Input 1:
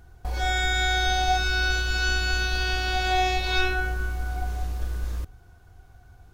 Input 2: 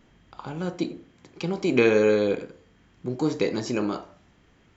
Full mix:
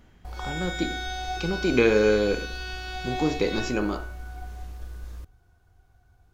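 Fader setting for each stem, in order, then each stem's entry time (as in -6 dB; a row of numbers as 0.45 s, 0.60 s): -9.0 dB, -0.5 dB; 0.00 s, 0.00 s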